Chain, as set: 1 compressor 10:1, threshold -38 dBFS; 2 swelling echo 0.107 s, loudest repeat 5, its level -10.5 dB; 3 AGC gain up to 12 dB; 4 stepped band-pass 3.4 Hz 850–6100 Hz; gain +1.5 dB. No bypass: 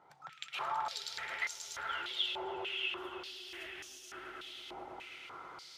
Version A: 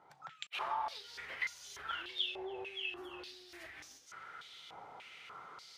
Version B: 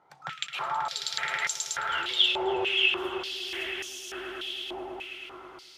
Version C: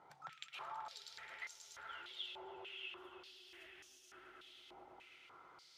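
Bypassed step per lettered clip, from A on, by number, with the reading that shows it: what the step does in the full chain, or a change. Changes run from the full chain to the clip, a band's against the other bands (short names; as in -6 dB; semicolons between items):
2, momentary loudness spread change +2 LU; 1, mean gain reduction 7.5 dB; 3, crest factor change +5.0 dB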